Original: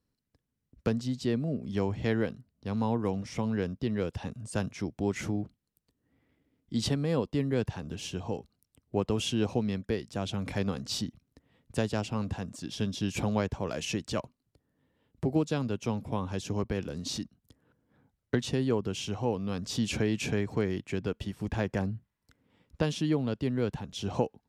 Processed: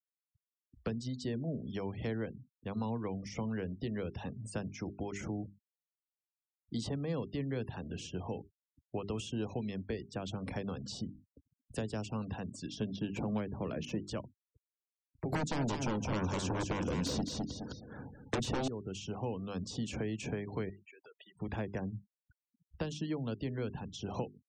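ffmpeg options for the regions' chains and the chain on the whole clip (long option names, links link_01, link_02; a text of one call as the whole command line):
ffmpeg -i in.wav -filter_complex "[0:a]asettb=1/sr,asplit=3[link_01][link_02][link_03];[link_01]atrim=end=12.814[link_04];[link_02]atrim=start=12.81:end=14,asetpts=PTS-STARTPTS,afade=type=in:duration=0.004:curve=qsin,afade=type=out:start_time=1.186:duration=0.004:curve=qsin,equalizer=frequency=230:width=0.58:gain=9,bandreject=frequency=60:width_type=h:width=6,bandreject=frequency=120:width_type=h:width=6,bandreject=frequency=180:width_type=h:width=6,bandreject=frequency=240:width_type=h:width=6,adynamicsmooth=sensitivity=8:basefreq=1600[link_05];[link_03]atrim=start=13.996[link_06];[link_04][link_05]acrossfade=duration=0.004:curve1=hsin:curve2=qsin[link_07];[link_07][link_06]acrossfade=duration=0.004:curve1=qsin:curve2=hsin,asettb=1/sr,asplit=3[link_08][link_09][link_10];[link_08]atrim=end=15.324[link_11];[link_09]atrim=start=15.32:end=18.68,asetpts=PTS-STARTPTS,afade=type=in:duration=0.004:curve=qsin,afade=type=out:start_time=3.356:duration=0.004:curve=qsin,lowpass=9800,aeval=exprs='0.224*sin(PI/2*7.08*val(0)/0.224)':channel_layout=same,aecho=1:1:209|418|627:0.447|0.0983|0.0216,atrim=end_sample=148176[link_12];[link_10]atrim=start=18.676[link_13];[link_11][link_12]acrossfade=duration=0.004:curve1=hsin:curve2=qsin[link_14];[link_14][link_13]acrossfade=duration=0.004:curve1=qsin:curve2=hsin,asettb=1/sr,asplit=3[link_15][link_16][link_17];[link_15]atrim=end=20.694[link_18];[link_16]atrim=start=20.69:end=21.35,asetpts=PTS-STARTPTS,afade=type=in:duration=0.004:curve=qsin,afade=type=out:start_time=0.656:duration=0.004:curve=qsin,highpass=730,acompressor=threshold=-49dB:ratio=16:attack=3.2:release=140:knee=1:detection=peak[link_19];[link_17]atrim=start=21.346[link_20];[link_18][link_19]acrossfade=duration=0.004:curve1=hsin:curve2=qsin[link_21];[link_21][link_20]acrossfade=duration=0.004:curve1=qsin:curve2=hsin,acrossover=split=150|480|1300|5900[link_22][link_23][link_24][link_25][link_26];[link_22]acompressor=threshold=-40dB:ratio=4[link_27];[link_23]acompressor=threshold=-37dB:ratio=4[link_28];[link_24]acompressor=threshold=-44dB:ratio=4[link_29];[link_25]acompressor=threshold=-48dB:ratio=4[link_30];[link_26]acompressor=threshold=-50dB:ratio=4[link_31];[link_27][link_28][link_29][link_30][link_31]amix=inputs=5:normalize=0,bandreject=frequency=50:width_type=h:width=6,bandreject=frequency=100:width_type=h:width=6,bandreject=frequency=150:width_type=h:width=6,bandreject=frequency=200:width_type=h:width=6,bandreject=frequency=250:width_type=h:width=6,bandreject=frequency=300:width_type=h:width=6,bandreject=frequency=350:width_type=h:width=6,bandreject=frequency=400:width_type=h:width=6,afftfilt=real='re*gte(hypot(re,im),0.00398)':imag='im*gte(hypot(re,im),0.00398)':win_size=1024:overlap=0.75,volume=-1dB" out.wav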